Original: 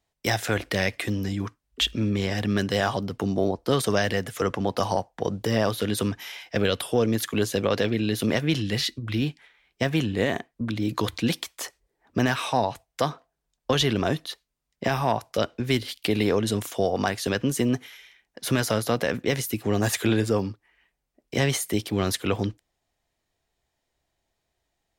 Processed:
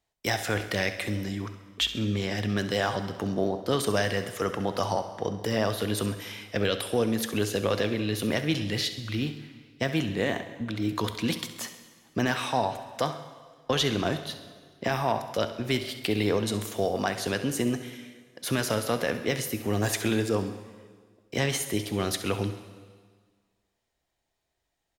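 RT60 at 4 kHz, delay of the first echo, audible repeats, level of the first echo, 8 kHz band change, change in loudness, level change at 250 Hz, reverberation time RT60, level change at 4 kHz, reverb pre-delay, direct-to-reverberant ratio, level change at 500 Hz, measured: 1.6 s, 67 ms, 2, -13.5 dB, -2.0 dB, -3.0 dB, -3.5 dB, 1.6 s, -2.0 dB, 6 ms, 8.5 dB, -2.5 dB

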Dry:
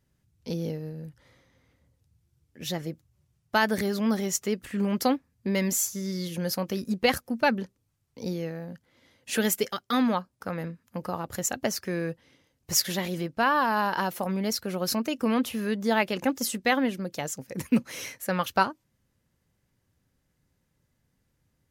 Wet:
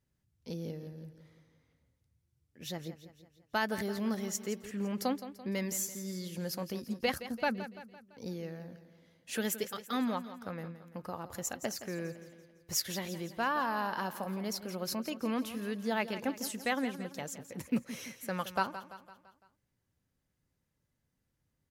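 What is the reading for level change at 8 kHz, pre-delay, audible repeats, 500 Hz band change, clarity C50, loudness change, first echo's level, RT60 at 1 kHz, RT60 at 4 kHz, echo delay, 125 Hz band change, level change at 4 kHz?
-8.0 dB, no reverb, 4, -8.0 dB, no reverb, -8.5 dB, -13.0 dB, no reverb, no reverb, 169 ms, -8.5 dB, -8.0 dB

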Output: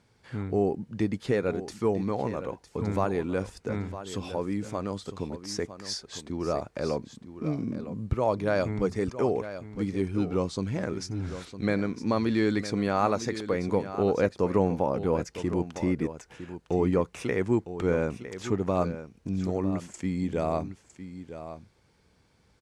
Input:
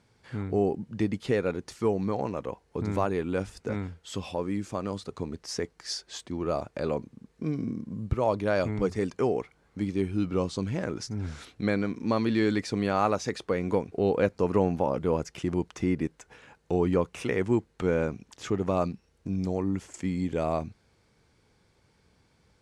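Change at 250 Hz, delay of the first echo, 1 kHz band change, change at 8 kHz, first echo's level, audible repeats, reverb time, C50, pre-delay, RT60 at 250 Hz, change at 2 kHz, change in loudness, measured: +0.5 dB, 957 ms, 0.0 dB, 0.0 dB, -12.0 dB, 1, no reverb, no reverb, no reverb, no reverb, 0.0 dB, 0.0 dB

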